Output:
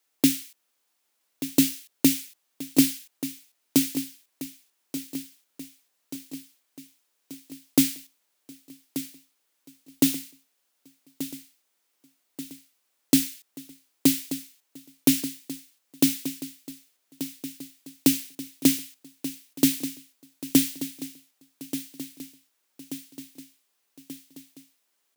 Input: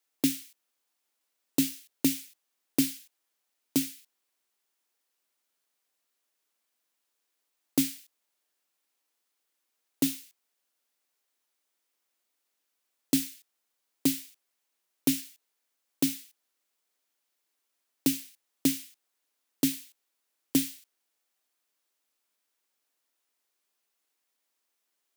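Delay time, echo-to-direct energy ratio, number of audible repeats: 1183 ms, -10.5 dB, 5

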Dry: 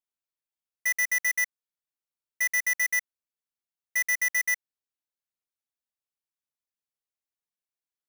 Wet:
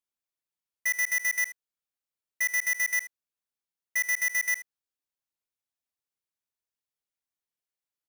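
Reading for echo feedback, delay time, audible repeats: no regular repeats, 77 ms, 1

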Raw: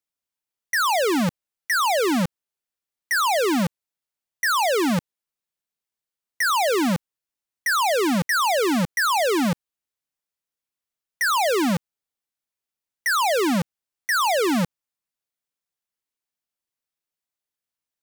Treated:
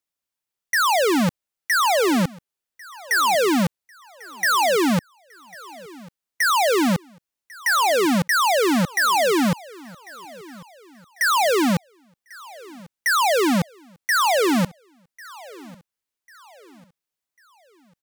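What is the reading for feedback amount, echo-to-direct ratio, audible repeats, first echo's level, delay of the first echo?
40%, -21.5 dB, 2, -22.0 dB, 1096 ms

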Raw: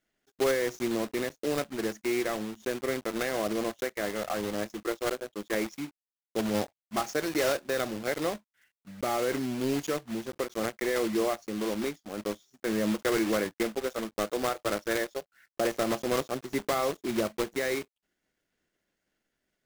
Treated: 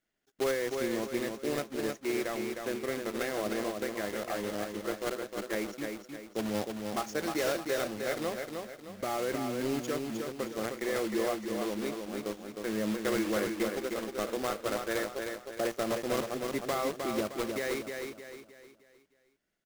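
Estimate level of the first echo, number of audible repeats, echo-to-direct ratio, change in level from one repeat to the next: -5.0 dB, 4, -4.0 dB, -8.0 dB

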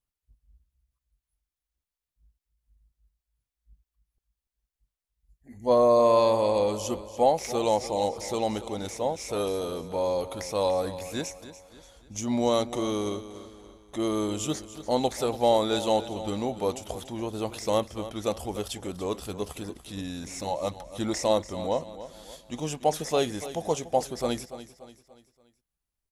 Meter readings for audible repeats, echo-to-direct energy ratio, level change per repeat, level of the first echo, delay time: 3, -13.0 dB, -7.0 dB, -14.0 dB, 289 ms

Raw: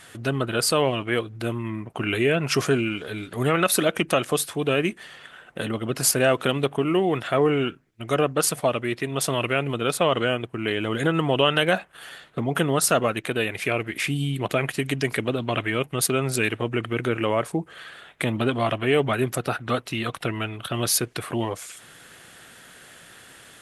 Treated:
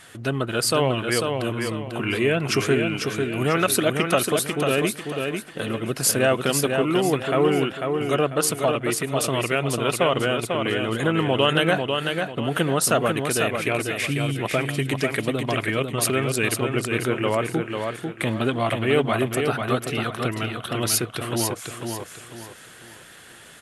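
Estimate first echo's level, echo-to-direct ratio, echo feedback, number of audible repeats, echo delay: -5.0 dB, -4.5 dB, 34%, 4, 495 ms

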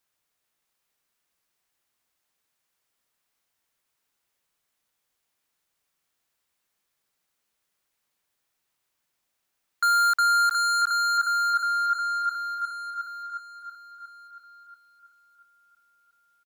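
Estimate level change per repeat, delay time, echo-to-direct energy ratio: -7.5 dB, 684 ms, -6.5 dB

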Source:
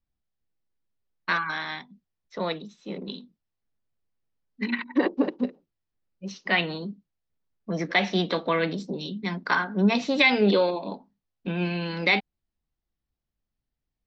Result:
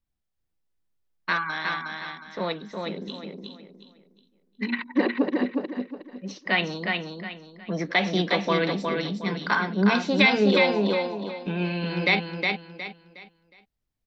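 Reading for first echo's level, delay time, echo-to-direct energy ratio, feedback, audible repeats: -4.0 dB, 363 ms, -3.5 dB, 31%, 4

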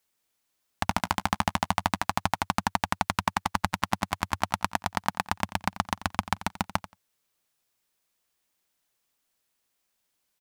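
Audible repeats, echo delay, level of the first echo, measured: 2, 88 ms, -16.0 dB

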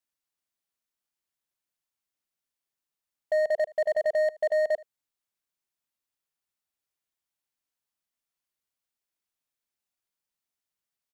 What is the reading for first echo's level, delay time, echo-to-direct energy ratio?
-22.5 dB, 77 ms, -22.5 dB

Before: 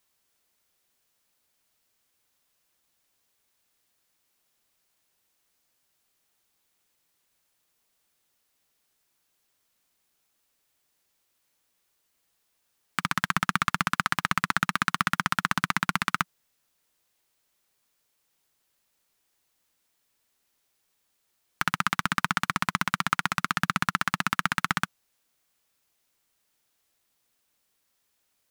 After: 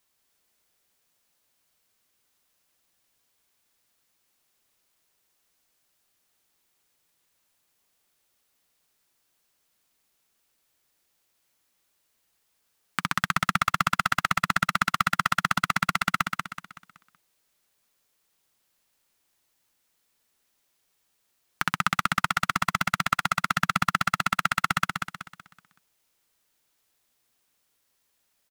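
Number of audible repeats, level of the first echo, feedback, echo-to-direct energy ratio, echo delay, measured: 4, -5.0 dB, 38%, -4.5 dB, 188 ms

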